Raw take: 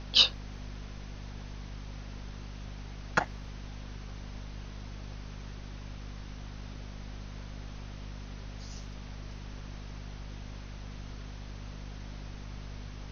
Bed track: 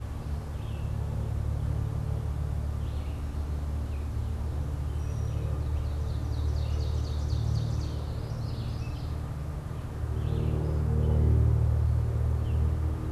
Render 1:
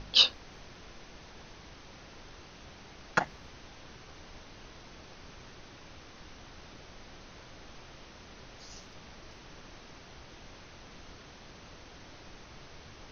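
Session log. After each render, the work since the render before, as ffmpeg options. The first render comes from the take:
ffmpeg -i in.wav -af "bandreject=frequency=50:width_type=h:width=4,bandreject=frequency=100:width_type=h:width=4,bandreject=frequency=150:width_type=h:width=4,bandreject=frequency=200:width_type=h:width=4,bandreject=frequency=250:width_type=h:width=4" out.wav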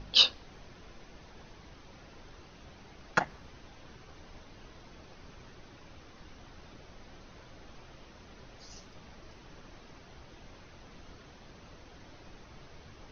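ffmpeg -i in.wav -af "afftdn=noise_reduction=6:noise_floor=-52" out.wav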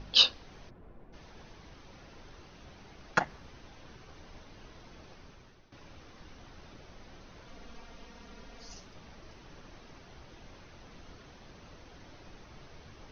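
ffmpeg -i in.wav -filter_complex "[0:a]asplit=3[link_01][link_02][link_03];[link_01]afade=type=out:start_time=0.69:duration=0.02[link_04];[link_02]adynamicsmooth=sensitivity=4:basefreq=1000,afade=type=in:start_time=0.69:duration=0.02,afade=type=out:start_time=1.12:duration=0.02[link_05];[link_03]afade=type=in:start_time=1.12:duration=0.02[link_06];[link_04][link_05][link_06]amix=inputs=3:normalize=0,asettb=1/sr,asplit=3[link_07][link_08][link_09];[link_07]atrim=end=7.474[link_10];[link_08]atrim=start=7.47:end=8.74,asetpts=PTS-STARTPTS,afade=type=in:duration=0.004:curve=qsin,afade=type=out:start_time=1.266:duration=0.004:curve=qsin,aecho=1:1:4.3:0.65,atrim=end_sample=56007[link_11];[link_09]atrim=start=8.736[link_12];[link_10][link_11]acrossfade=duration=0.004:curve1=hsin:curve2=qsin[link_13];[link_13][link_12]acrossfade=duration=0.004:curve1=qsin:curve2=hsin,asplit=2[link_14][link_15];[link_14]atrim=end=5.72,asetpts=PTS-STARTPTS,afade=type=out:start_time=5.11:duration=0.61:silence=0.223872[link_16];[link_15]atrim=start=5.72,asetpts=PTS-STARTPTS,afade=type=in:duration=0.004:curve=hsin:silence=0.223872[link_17];[link_16][link_17]concat=n=2:v=0:a=1" out.wav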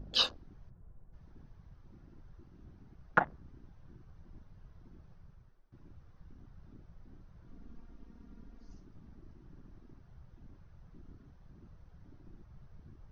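ffmpeg -i in.wav -af "afwtdn=0.00708,highshelf=frequency=1900:width_type=q:width=1.5:gain=-6" out.wav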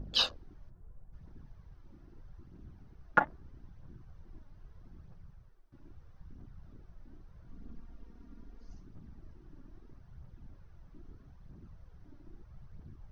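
ffmpeg -i in.wav -af "aphaser=in_gain=1:out_gain=1:delay=3.6:decay=0.36:speed=0.78:type=triangular" out.wav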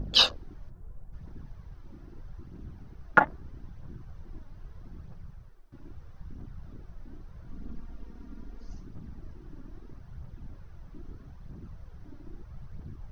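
ffmpeg -i in.wav -af "volume=8dB,alimiter=limit=-3dB:level=0:latency=1" out.wav

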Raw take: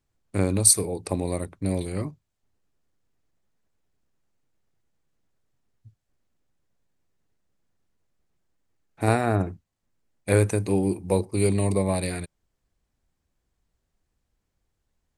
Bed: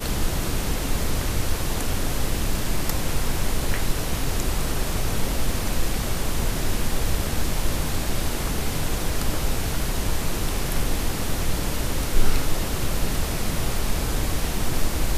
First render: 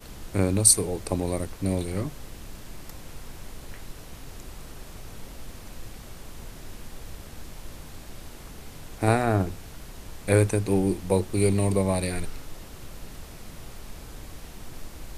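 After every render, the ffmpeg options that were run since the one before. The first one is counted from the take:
ffmpeg -i in.wav -i bed.wav -filter_complex "[1:a]volume=-17dB[link_01];[0:a][link_01]amix=inputs=2:normalize=0" out.wav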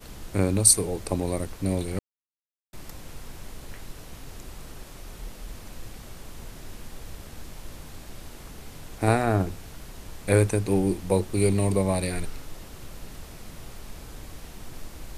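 ffmpeg -i in.wav -filter_complex "[0:a]asettb=1/sr,asplit=3[link_01][link_02][link_03];[link_01]atrim=end=4.844[link_04];[link_02]atrim=start=4.84:end=5.54,asetpts=PTS-STARTPTS,afade=type=in:duration=0.004:curve=qsin,afade=type=out:start_time=0.696:duration=0.004:curve=qsin,afreqshift=-47[link_05];[link_03]atrim=start=5.536[link_06];[link_04][link_05]acrossfade=duration=0.004:curve1=hsin:curve2=qsin[link_07];[link_07][link_06]acrossfade=duration=0.004:curve1=qsin:curve2=hsin,asplit=3[link_08][link_09][link_10];[link_08]atrim=end=1.99,asetpts=PTS-STARTPTS,afade=type=out:start_time=1.986:duration=0.004:curve=hsin[link_11];[link_09]atrim=start=1.99:end=2.73,asetpts=PTS-STARTPTS,volume=0[link_12];[link_10]atrim=start=2.73,asetpts=PTS-STARTPTS,afade=type=in:duration=0.004:curve=hsin[link_13];[link_11][link_12][link_13]concat=n=3:v=0:a=1" out.wav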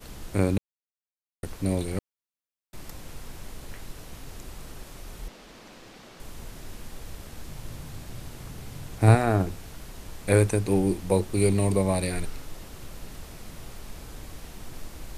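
ffmpeg -i in.wav -filter_complex "[0:a]asettb=1/sr,asplit=3[link_01][link_02][link_03];[link_01]atrim=end=5.284[link_04];[link_02]atrim=start=5.28:end=6.2,asetpts=PTS-STARTPTS,afade=type=in:duration=0.004:curve=qsin,afade=type=out:start_time=0.916:duration=0.004:curve=qsin,acrossover=split=170 6300:gain=0.112 1 0.224[link_05][link_06][link_07];[link_05][link_06][link_07]amix=inputs=3:normalize=0[link_08];[link_03]atrim=start=6.196[link_09];[link_04][link_08]acrossfade=duration=0.004:curve1=hsin:curve2=qsin[link_10];[link_10][link_09]acrossfade=duration=0.004:curve1=qsin:curve2=hsin,asettb=1/sr,asplit=3[link_11][link_12][link_13];[link_11]atrim=end=7.484[link_14];[link_12]atrim=start=7.48:end=9.15,asetpts=PTS-STARTPTS,afade=type=in:duration=0.004:curve=qsin,afade=type=out:start_time=1.666:duration=0.004:curve=qsin,equalizer=frequency=120:width=1.5:gain=9.5[link_15];[link_13]atrim=start=9.146[link_16];[link_14][link_15]acrossfade=duration=0.004:curve1=hsin:curve2=qsin[link_17];[link_17][link_16]acrossfade=duration=0.004:curve1=qsin:curve2=hsin,asplit=3[link_18][link_19][link_20];[link_18]atrim=end=0.58,asetpts=PTS-STARTPTS,afade=type=out:start_time=0.576:duration=0.004:curve=hsin[link_21];[link_19]atrim=start=0.58:end=1.43,asetpts=PTS-STARTPTS,volume=0[link_22];[link_20]atrim=start=1.43,asetpts=PTS-STARTPTS,afade=type=in:duration=0.004:curve=hsin[link_23];[link_21][link_22][link_23]concat=n=3:v=0:a=1" out.wav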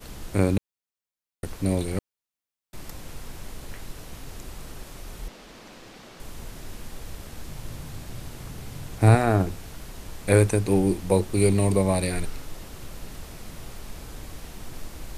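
ffmpeg -i in.wav -af "volume=2dB,alimiter=limit=-3dB:level=0:latency=1" out.wav

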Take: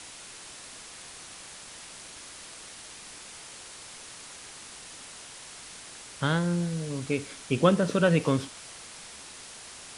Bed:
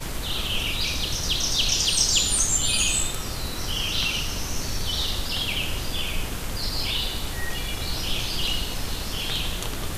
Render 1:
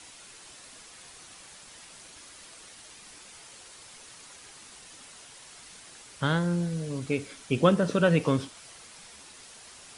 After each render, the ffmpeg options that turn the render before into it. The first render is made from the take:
ffmpeg -i in.wav -af "afftdn=noise_reduction=6:noise_floor=-46" out.wav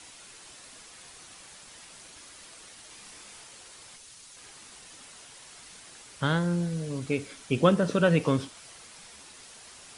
ffmpeg -i in.wav -filter_complex "[0:a]asettb=1/sr,asplit=3[link_01][link_02][link_03];[link_01]atrim=end=2.884[link_04];[link_02]atrim=start=2.88:end=3.44,asetpts=PTS-STARTPTS,afade=type=in:duration=0.004:curve=qsin,afade=type=out:start_time=0.556:duration=0.004:curve=qsin,asplit=2[link_05][link_06];[link_06]adelay=29,volume=-5dB[link_07];[link_05][link_07]amix=inputs=2:normalize=0,atrim=end_sample=24696[link_08];[link_03]atrim=start=3.436[link_09];[link_04][link_08]acrossfade=duration=0.004:curve1=hsin:curve2=qsin[link_10];[link_10][link_09]acrossfade=duration=0.004:curve1=qsin:curve2=hsin,asettb=1/sr,asplit=3[link_11][link_12][link_13];[link_11]atrim=end=3.964[link_14];[link_12]atrim=start=3.96:end=4.37,asetpts=PTS-STARTPTS,afade=type=in:duration=0.004:curve=qsin,afade=type=out:start_time=0.406:duration=0.004:curve=qsin,acrossover=split=130|3000[link_15][link_16][link_17];[link_16]acompressor=threshold=-59dB:ratio=6:attack=3.2:release=140:knee=2.83:detection=peak[link_18];[link_15][link_18][link_17]amix=inputs=3:normalize=0[link_19];[link_13]atrim=start=4.366[link_20];[link_14][link_19]acrossfade=duration=0.004:curve1=hsin:curve2=qsin[link_21];[link_21][link_20]acrossfade=duration=0.004:curve1=qsin:curve2=hsin" out.wav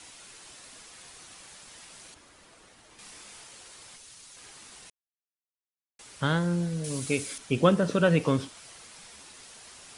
ffmpeg -i in.wav -filter_complex "[0:a]asettb=1/sr,asplit=3[link_01][link_02][link_03];[link_01]atrim=end=2.144[link_04];[link_02]atrim=start=2.14:end=2.99,asetpts=PTS-STARTPTS,afade=type=in:duration=0.004:curve=qsin,afade=type=out:start_time=0.846:duration=0.004:curve=qsin,highshelf=frequency=2200:gain=-11[link_05];[link_03]atrim=start=2.986[link_06];[link_04][link_05]acrossfade=duration=0.004:curve1=hsin:curve2=qsin[link_07];[link_07][link_06]acrossfade=duration=0.004:curve1=qsin:curve2=hsin,asettb=1/sr,asplit=3[link_08][link_09][link_10];[link_08]atrim=end=6.844[link_11];[link_09]atrim=start=6.84:end=7.38,asetpts=PTS-STARTPTS,afade=type=in:duration=0.004:curve=qsin,afade=type=out:start_time=0.536:duration=0.004:curve=qsin,aemphasis=mode=production:type=75kf[link_12];[link_10]atrim=start=7.376[link_13];[link_11][link_12]acrossfade=duration=0.004:curve1=hsin:curve2=qsin[link_14];[link_14][link_13]acrossfade=duration=0.004:curve1=qsin:curve2=hsin,asplit=3[link_15][link_16][link_17];[link_15]atrim=end=4.9,asetpts=PTS-STARTPTS,afade=type=out:start_time=4.896:duration=0.004:curve=hsin[link_18];[link_16]atrim=start=4.9:end=5.99,asetpts=PTS-STARTPTS,volume=0[link_19];[link_17]atrim=start=5.99,asetpts=PTS-STARTPTS,afade=type=in:duration=0.004:curve=hsin[link_20];[link_18][link_19][link_20]concat=n=3:v=0:a=1" out.wav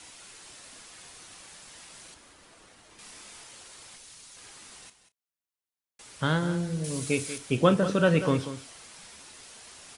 ffmpeg -i in.wav -filter_complex "[0:a]asplit=2[link_01][link_02];[link_02]adelay=32,volume=-13.5dB[link_03];[link_01][link_03]amix=inputs=2:normalize=0,aecho=1:1:189:0.237" out.wav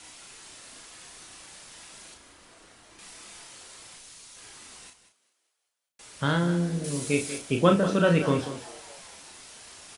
ffmpeg -i in.wav -filter_complex "[0:a]asplit=2[link_01][link_02];[link_02]adelay=35,volume=-5dB[link_03];[link_01][link_03]amix=inputs=2:normalize=0,asplit=6[link_04][link_05][link_06][link_07][link_08][link_09];[link_05]adelay=198,afreqshift=98,volume=-22dB[link_10];[link_06]adelay=396,afreqshift=196,volume=-26.2dB[link_11];[link_07]adelay=594,afreqshift=294,volume=-30.3dB[link_12];[link_08]adelay=792,afreqshift=392,volume=-34.5dB[link_13];[link_09]adelay=990,afreqshift=490,volume=-38.6dB[link_14];[link_04][link_10][link_11][link_12][link_13][link_14]amix=inputs=6:normalize=0" out.wav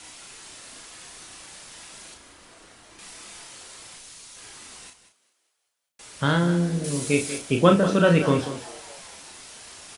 ffmpeg -i in.wav -af "volume=3.5dB" out.wav

